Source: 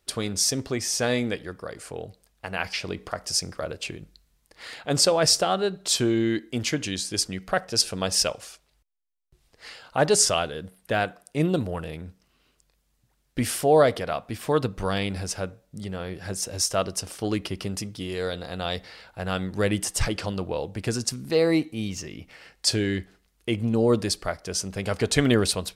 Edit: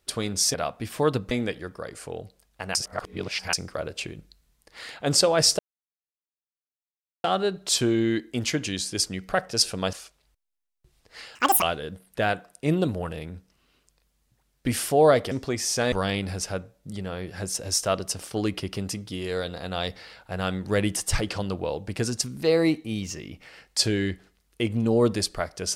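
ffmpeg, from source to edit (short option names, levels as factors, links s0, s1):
-filter_complex "[0:a]asplit=11[s0][s1][s2][s3][s4][s5][s6][s7][s8][s9][s10];[s0]atrim=end=0.542[s11];[s1]atrim=start=14.028:end=14.802[s12];[s2]atrim=start=1.148:end=2.592[s13];[s3]atrim=start=2.588:end=3.372,asetpts=PTS-STARTPTS,areverse[s14];[s4]atrim=start=3.368:end=5.43,asetpts=PTS-STARTPTS,afade=t=out:st=2.058:d=0.004:c=hsin,apad=pad_dur=1.65[s15];[s5]atrim=start=5.43:end=8.122,asetpts=PTS-STARTPTS,afade=t=in:d=0.004:c=hsin[s16];[s6]atrim=start=8.408:end=9.834[s17];[s7]atrim=start=9.83:end=10.34,asetpts=PTS-STARTPTS,asetrate=82467,aresample=44100,atrim=end_sample=12027,asetpts=PTS-STARTPTS[s18];[s8]atrim=start=10.336:end=14.032[s19];[s9]atrim=start=0.538:end=1.152[s20];[s10]atrim=start=14.798[s21];[s11][s12]acrossfade=d=0.004:c1=hsin:c2=hsin[s22];[s22][s13]acrossfade=d=0.004:c1=hsin:c2=hsin[s23];[s23][s14]acrossfade=d=0.004:c1=hsin:c2=hsin[s24];[s15][s16]concat=n=2:v=0:a=1[s25];[s24][s25]acrossfade=d=0.004:c1=hsin:c2=hsin[s26];[s26][s17]acrossfade=d=0.004:c1=hsin:c2=hsin[s27];[s27][s18]acrossfade=d=0.004:c1=hsin:c2=hsin[s28];[s28][s19]acrossfade=d=0.004:c1=hsin:c2=hsin[s29];[s29][s20]acrossfade=d=0.004:c1=hsin:c2=hsin[s30];[s30][s21]acrossfade=d=0.004:c1=hsin:c2=hsin"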